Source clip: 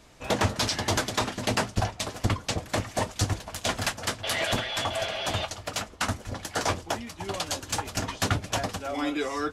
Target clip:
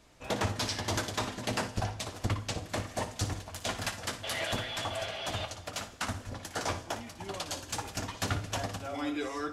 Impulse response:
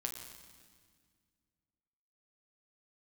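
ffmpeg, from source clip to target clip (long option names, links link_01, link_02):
-filter_complex "[0:a]asplit=2[link_01][link_02];[1:a]atrim=start_sample=2205,asetrate=70560,aresample=44100,adelay=58[link_03];[link_02][link_03]afir=irnorm=-1:irlink=0,volume=-6dB[link_04];[link_01][link_04]amix=inputs=2:normalize=0,volume=-6.5dB"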